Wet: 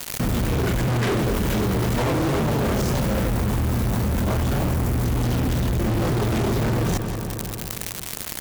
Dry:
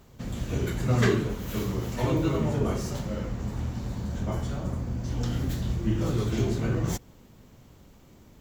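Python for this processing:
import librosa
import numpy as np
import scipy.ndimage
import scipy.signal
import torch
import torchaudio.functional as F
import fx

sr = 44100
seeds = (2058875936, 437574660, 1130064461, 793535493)

y = fx.high_shelf(x, sr, hz=4500.0, db=-10.5)
y = fx.dmg_noise_colour(y, sr, seeds[0], colour='blue', level_db=-52.0)
y = fx.fuzz(y, sr, gain_db=39.0, gate_db=-42.0)
y = fx.echo_filtered(y, sr, ms=182, feedback_pct=51, hz=3600.0, wet_db=-17.5)
y = fx.env_flatten(y, sr, amount_pct=70)
y = y * 10.0 ** (-7.5 / 20.0)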